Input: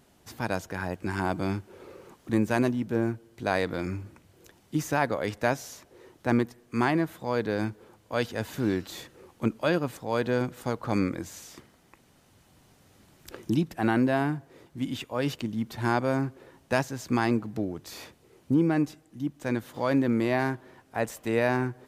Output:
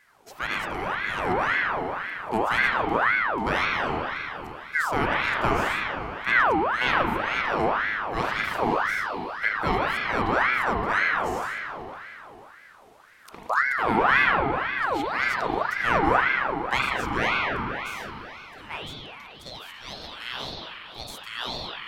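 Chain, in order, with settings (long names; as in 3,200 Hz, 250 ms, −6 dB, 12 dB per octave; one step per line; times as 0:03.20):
high-pass filter sweep 120 Hz → 2,600 Hz, 0:15.62–0:19.16
spring reverb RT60 3.3 s, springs 38 ms, chirp 75 ms, DRR −3.5 dB
ring modulator whose carrier an LFO sweeps 1,200 Hz, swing 55%, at 1.9 Hz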